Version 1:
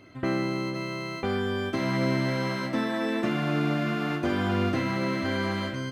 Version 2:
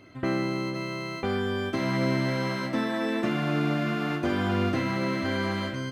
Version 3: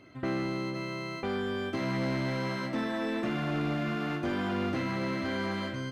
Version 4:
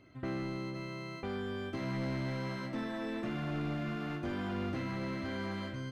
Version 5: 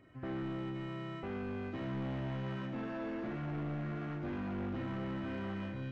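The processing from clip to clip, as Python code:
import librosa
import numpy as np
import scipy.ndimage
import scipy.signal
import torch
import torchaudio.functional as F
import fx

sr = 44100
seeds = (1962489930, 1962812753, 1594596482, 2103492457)

y1 = x
y2 = fx.high_shelf(y1, sr, hz=7800.0, db=-4.5)
y2 = fx.hum_notches(y2, sr, base_hz=50, count=2)
y2 = 10.0 ** (-21.5 / 20.0) * np.tanh(y2 / 10.0 ** (-21.5 / 20.0))
y2 = y2 * librosa.db_to_amplitude(-2.5)
y3 = fx.low_shelf(y2, sr, hz=99.0, db=11.0)
y3 = y3 * librosa.db_to_amplitude(-7.0)
y4 = fx.freq_compress(y3, sr, knee_hz=1500.0, ratio=1.5)
y4 = fx.room_flutter(y4, sr, wall_m=10.4, rt60_s=0.44)
y4 = 10.0 ** (-33.0 / 20.0) * np.tanh(y4 / 10.0 ** (-33.0 / 20.0))
y4 = y4 * librosa.db_to_amplitude(-1.0)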